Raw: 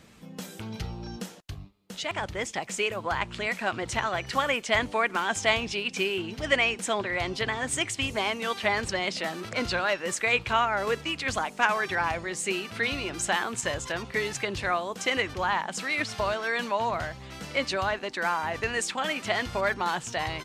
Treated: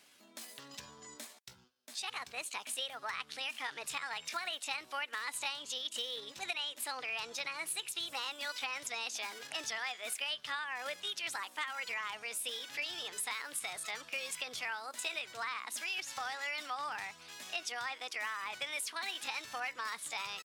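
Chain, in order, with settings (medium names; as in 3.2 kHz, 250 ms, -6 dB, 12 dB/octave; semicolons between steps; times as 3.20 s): high-pass 1.4 kHz 6 dB/octave; compression 6:1, threshold -31 dBFS, peak gain reduction 10.5 dB; pitch shift +4 st; trim -3.5 dB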